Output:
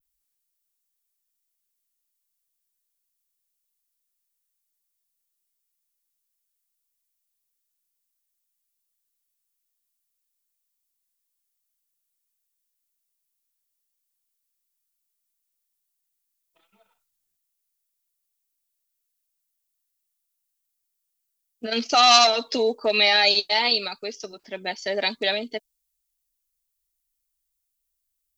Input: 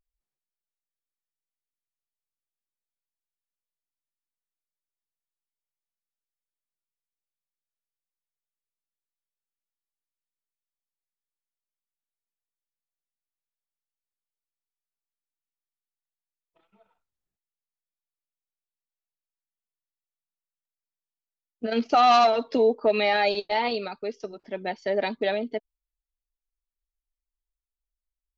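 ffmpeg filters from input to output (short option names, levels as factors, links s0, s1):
-af "adynamicequalizer=threshold=0.00794:dfrequency=6000:dqfactor=0.76:tfrequency=6000:tqfactor=0.76:attack=5:release=100:ratio=0.375:range=3:mode=boostabove:tftype=bell,crystalizer=i=7:c=0,volume=0.708"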